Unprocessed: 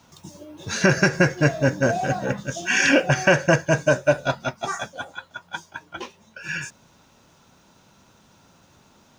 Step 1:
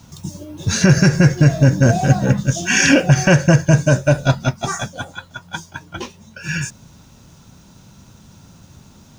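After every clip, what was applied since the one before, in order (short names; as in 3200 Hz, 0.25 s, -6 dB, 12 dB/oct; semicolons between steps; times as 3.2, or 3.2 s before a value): tone controls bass +14 dB, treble +7 dB; maximiser +4 dB; gain -1 dB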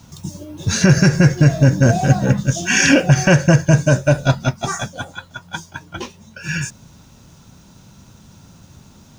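nothing audible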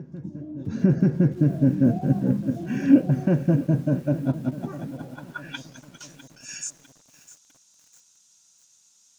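reverse echo 1.062 s -19 dB; band-pass sweep 260 Hz -> 7300 Hz, 4.97–5.81; lo-fi delay 0.652 s, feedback 55%, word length 7-bit, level -14.5 dB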